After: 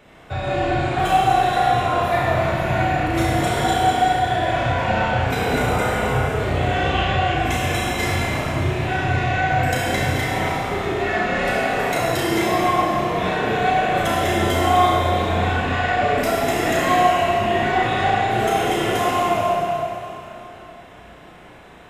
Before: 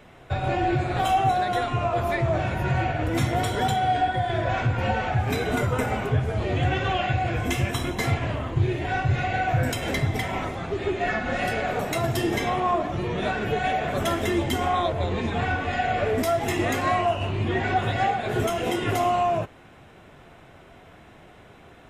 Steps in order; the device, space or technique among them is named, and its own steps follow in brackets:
tunnel (flutter between parallel walls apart 5.7 metres, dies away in 0.39 s; convolution reverb RT60 3.3 s, pre-delay 31 ms, DRR −3.5 dB)
low-shelf EQ 210 Hz −4 dB

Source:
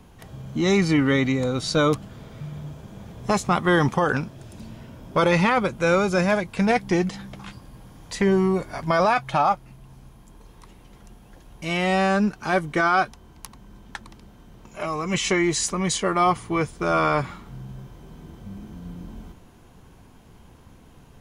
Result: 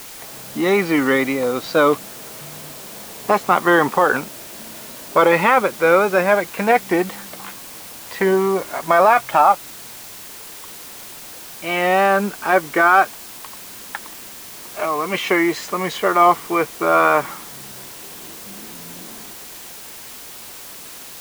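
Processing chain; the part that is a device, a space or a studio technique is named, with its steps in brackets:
wax cylinder (band-pass filter 370–2,400 Hz; tape wow and flutter; white noise bed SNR 17 dB)
level +7.5 dB

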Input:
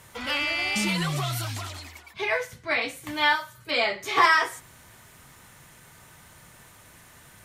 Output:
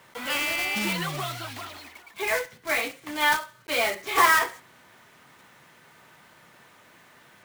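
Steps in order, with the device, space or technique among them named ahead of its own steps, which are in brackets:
early digital voice recorder (band-pass filter 210–3,700 Hz; one scale factor per block 3 bits)

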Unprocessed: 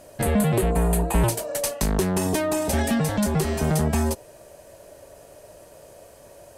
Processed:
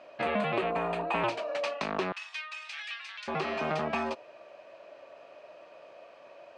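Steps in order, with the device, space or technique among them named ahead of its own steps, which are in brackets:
phone earpiece (loudspeaker in its box 340–4,100 Hz, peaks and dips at 430 Hz −5 dB, 670 Hz +3 dB, 1,200 Hz +8 dB, 2,500 Hz +9 dB)
0:02.12–0:03.28: Bessel high-pass filter 2,500 Hz, order 4
level −4 dB

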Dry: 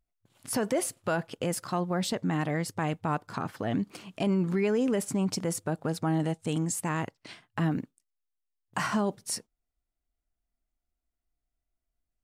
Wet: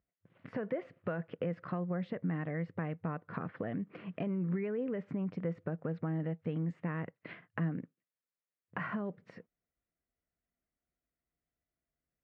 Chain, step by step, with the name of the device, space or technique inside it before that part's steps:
bass amplifier (downward compressor 4 to 1, threshold −37 dBFS, peak gain reduction 12 dB; loudspeaker in its box 83–2,300 Hz, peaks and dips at 170 Hz +7 dB, 500 Hz +6 dB, 860 Hz −7 dB, 1,900 Hz +4 dB)

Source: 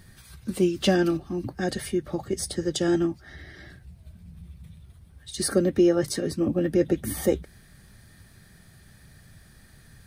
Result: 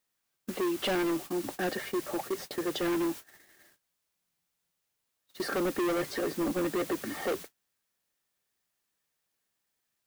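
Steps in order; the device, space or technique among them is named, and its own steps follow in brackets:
aircraft radio (band-pass filter 380–2,400 Hz; hard clipping −30.5 dBFS, distortion −5 dB; white noise bed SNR 11 dB; noise gate −43 dBFS, range −36 dB)
level +3.5 dB

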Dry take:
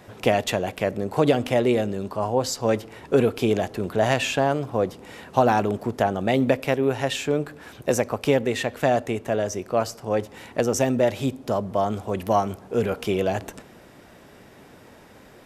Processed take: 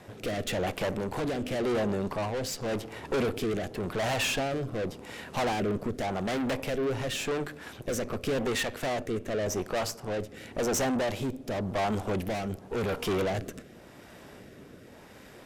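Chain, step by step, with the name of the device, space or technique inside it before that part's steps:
overdriven rotary cabinet (tube saturation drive 31 dB, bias 0.8; rotating-speaker cabinet horn 0.9 Hz)
level +6 dB

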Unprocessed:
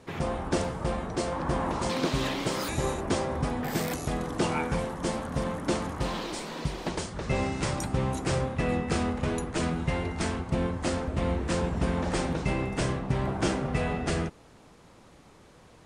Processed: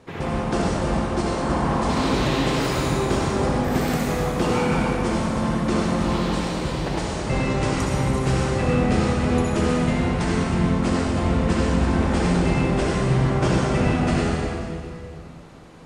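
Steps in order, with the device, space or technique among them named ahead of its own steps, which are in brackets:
swimming-pool hall (convolution reverb RT60 2.4 s, pre-delay 58 ms, DRR −4.5 dB; high-shelf EQ 6,000 Hz −6 dB)
level +2 dB

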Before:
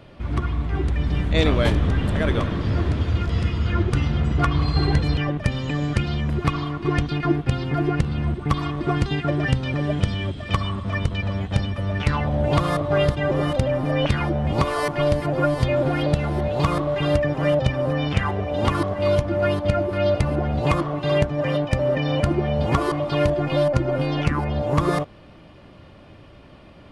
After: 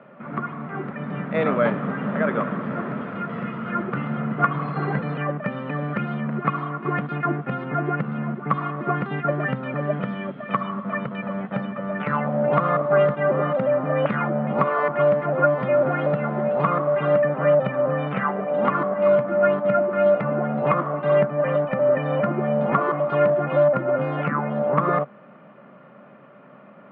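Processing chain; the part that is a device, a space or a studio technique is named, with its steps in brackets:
high-pass filter 200 Hz 24 dB per octave
bass cabinet (loudspeaker in its box 76–2,100 Hz, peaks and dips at 91 Hz −9 dB, 140 Hz +9 dB, 210 Hz +7 dB, 320 Hz −10 dB, 580 Hz +4 dB, 1,300 Hz +8 dB)

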